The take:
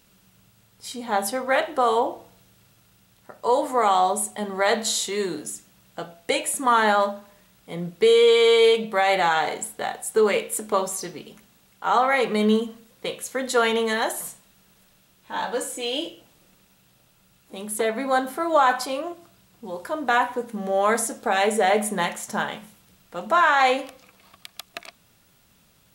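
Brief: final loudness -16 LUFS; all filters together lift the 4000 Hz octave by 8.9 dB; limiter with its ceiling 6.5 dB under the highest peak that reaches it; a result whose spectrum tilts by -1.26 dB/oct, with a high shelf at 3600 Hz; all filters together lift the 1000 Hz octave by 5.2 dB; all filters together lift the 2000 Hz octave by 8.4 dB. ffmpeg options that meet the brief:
-af "equalizer=f=1k:t=o:g=4.5,equalizer=f=2k:t=o:g=6.5,highshelf=f=3.6k:g=5,equalizer=f=4k:t=o:g=5.5,volume=3.5dB,alimiter=limit=-3.5dB:level=0:latency=1"

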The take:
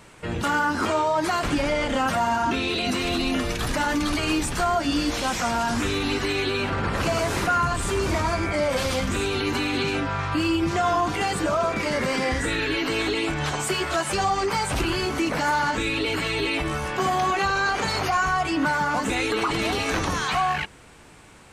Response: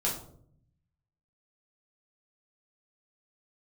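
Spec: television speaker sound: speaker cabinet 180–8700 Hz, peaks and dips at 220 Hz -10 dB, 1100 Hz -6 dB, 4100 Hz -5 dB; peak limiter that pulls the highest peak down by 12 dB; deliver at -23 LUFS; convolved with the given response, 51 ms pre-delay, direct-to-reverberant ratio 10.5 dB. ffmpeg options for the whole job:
-filter_complex "[0:a]alimiter=limit=-24dB:level=0:latency=1,asplit=2[a][b];[1:a]atrim=start_sample=2205,adelay=51[c];[b][c]afir=irnorm=-1:irlink=0,volume=-17dB[d];[a][d]amix=inputs=2:normalize=0,highpass=f=180:w=0.5412,highpass=f=180:w=1.3066,equalizer=f=220:t=q:w=4:g=-10,equalizer=f=1.1k:t=q:w=4:g=-6,equalizer=f=4.1k:t=q:w=4:g=-5,lowpass=f=8.7k:w=0.5412,lowpass=f=8.7k:w=1.3066,volume=10dB"

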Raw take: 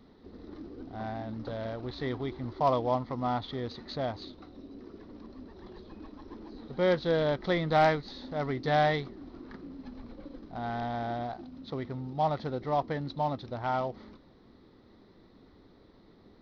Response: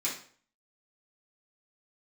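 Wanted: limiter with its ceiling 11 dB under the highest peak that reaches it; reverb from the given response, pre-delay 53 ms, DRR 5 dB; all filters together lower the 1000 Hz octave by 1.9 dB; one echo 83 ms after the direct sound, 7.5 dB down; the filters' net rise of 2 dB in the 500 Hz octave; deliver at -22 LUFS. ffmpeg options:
-filter_complex "[0:a]equalizer=f=500:t=o:g=4,equalizer=f=1k:t=o:g=-5,alimiter=level_in=1dB:limit=-24dB:level=0:latency=1,volume=-1dB,aecho=1:1:83:0.422,asplit=2[a][b];[1:a]atrim=start_sample=2205,adelay=53[c];[b][c]afir=irnorm=-1:irlink=0,volume=-10.5dB[d];[a][d]amix=inputs=2:normalize=0,volume=13dB"

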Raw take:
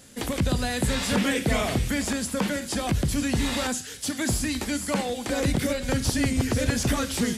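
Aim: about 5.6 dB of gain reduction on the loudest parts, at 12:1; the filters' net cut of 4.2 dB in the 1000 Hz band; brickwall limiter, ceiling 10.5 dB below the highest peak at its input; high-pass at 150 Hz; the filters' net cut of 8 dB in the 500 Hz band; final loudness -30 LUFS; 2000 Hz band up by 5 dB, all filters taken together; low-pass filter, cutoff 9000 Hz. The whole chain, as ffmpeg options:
-af "highpass=150,lowpass=9k,equalizer=f=500:t=o:g=-8.5,equalizer=f=1k:t=o:g=-5.5,equalizer=f=2k:t=o:g=8,acompressor=threshold=-27dB:ratio=12,volume=5.5dB,alimiter=limit=-22.5dB:level=0:latency=1"

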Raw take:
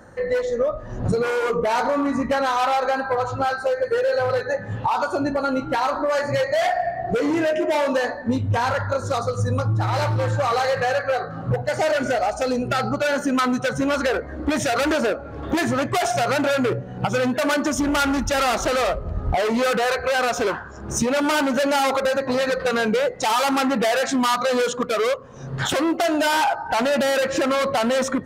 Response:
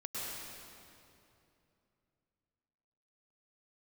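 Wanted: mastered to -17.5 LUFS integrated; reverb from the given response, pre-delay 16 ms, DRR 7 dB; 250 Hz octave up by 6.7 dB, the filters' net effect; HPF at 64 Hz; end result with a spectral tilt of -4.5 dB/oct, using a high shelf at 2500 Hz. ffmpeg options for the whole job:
-filter_complex "[0:a]highpass=64,equalizer=f=250:t=o:g=7.5,highshelf=f=2.5k:g=6,asplit=2[a][b];[1:a]atrim=start_sample=2205,adelay=16[c];[b][c]afir=irnorm=-1:irlink=0,volume=-9.5dB[d];[a][d]amix=inputs=2:normalize=0,volume=0.5dB"

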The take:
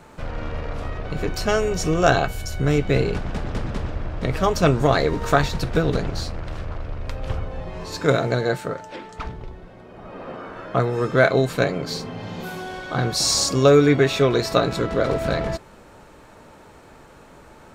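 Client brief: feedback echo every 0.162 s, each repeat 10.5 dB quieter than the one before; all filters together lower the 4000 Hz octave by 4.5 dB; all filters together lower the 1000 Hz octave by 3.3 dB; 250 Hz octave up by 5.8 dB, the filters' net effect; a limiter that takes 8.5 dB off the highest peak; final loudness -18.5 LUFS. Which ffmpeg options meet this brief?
-af "equalizer=f=250:t=o:g=8,equalizer=f=1k:t=o:g=-5.5,equalizer=f=4k:t=o:g=-5.5,alimiter=limit=-9.5dB:level=0:latency=1,aecho=1:1:162|324|486:0.299|0.0896|0.0269,volume=4dB"

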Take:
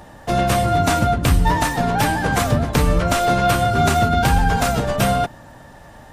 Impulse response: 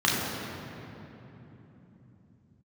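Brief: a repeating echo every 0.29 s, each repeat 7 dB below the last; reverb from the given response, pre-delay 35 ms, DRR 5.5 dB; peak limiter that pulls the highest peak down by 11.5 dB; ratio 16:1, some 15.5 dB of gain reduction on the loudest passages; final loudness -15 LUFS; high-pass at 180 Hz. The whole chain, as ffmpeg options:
-filter_complex "[0:a]highpass=180,acompressor=threshold=-30dB:ratio=16,alimiter=level_in=5.5dB:limit=-24dB:level=0:latency=1,volume=-5.5dB,aecho=1:1:290|580|870|1160|1450:0.447|0.201|0.0905|0.0407|0.0183,asplit=2[a][b];[1:a]atrim=start_sample=2205,adelay=35[c];[b][c]afir=irnorm=-1:irlink=0,volume=-21.5dB[d];[a][d]amix=inputs=2:normalize=0,volume=20.5dB"

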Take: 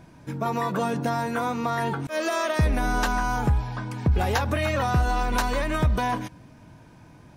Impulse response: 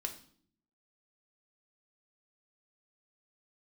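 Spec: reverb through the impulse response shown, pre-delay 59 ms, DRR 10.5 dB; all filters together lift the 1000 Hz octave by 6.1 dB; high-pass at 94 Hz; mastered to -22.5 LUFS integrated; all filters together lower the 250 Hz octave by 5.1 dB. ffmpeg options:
-filter_complex "[0:a]highpass=94,equalizer=f=250:t=o:g=-7,equalizer=f=1k:t=o:g=8,asplit=2[a][b];[1:a]atrim=start_sample=2205,adelay=59[c];[b][c]afir=irnorm=-1:irlink=0,volume=-10dB[d];[a][d]amix=inputs=2:normalize=0,volume=1dB"

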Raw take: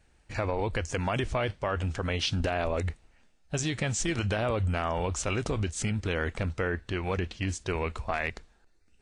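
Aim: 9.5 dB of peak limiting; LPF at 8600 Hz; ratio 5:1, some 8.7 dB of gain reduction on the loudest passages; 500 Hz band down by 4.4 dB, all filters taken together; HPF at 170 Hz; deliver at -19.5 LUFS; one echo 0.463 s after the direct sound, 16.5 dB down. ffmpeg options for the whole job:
-af "highpass=170,lowpass=8.6k,equalizer=f=500:t=o:g=-5.5,acompressor=threshold=-37dB:ratio=5,alimiter=level_in=6.5dB:limit=-24dB:level=0:latency=1,volume=-6.5dB,aecho=1:1:463:0.15,volume=24dB"

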